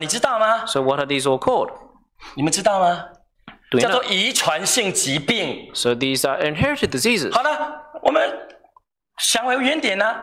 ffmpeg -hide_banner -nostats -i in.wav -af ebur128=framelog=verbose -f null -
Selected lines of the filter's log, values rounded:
Integrated loudness:
  I:         -19.2 LUFS
  Threshold: -29.9 LUFS
Loudness range:
  LRA:         2.0 LU
  Threshold: -39.9 LUFS
  LRA low:   -20.9 LUFS
  LRA high:  -18.9 LUFS